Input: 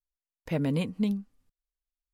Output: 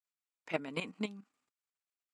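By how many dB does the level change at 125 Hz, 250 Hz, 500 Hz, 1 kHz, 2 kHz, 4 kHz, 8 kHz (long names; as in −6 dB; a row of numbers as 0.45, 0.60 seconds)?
−17.5 dB, −13.0 dB, −5.5 dB, −0.5 dB, +1.0 dB, −2.0 dB, can't be measured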